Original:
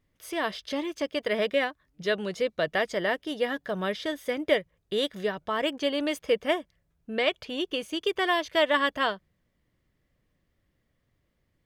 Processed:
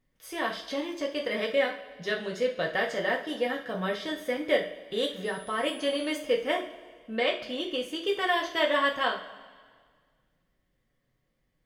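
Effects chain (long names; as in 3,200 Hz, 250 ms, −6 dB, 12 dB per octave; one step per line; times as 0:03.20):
coupled-rooms reverb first 0.36 s, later 1.8 s, from −17 dB, DRR −1 dB
0:05.24–0:06.12: steady tone 10,000 Hz −46 dBFS
level −4.5 dB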